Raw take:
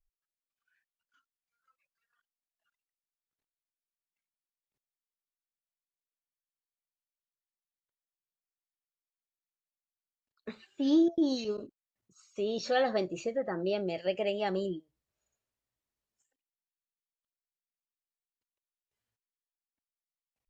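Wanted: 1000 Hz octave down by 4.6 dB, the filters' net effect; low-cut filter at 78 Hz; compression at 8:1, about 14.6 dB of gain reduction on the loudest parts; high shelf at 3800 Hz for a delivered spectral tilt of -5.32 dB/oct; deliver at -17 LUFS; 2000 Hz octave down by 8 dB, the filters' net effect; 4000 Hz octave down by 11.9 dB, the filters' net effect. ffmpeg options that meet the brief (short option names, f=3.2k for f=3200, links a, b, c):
-af "highpass=78,equalizer=f=1k:t=o:g=-5.5,equalizer=f=2k:t=o:g=-4,highshelf=f=3.8k:g=-8,equalizer=f=4k:t=o:g=-9,acompressor=threshold=-37dB:ratio=8,volume=25.5dB"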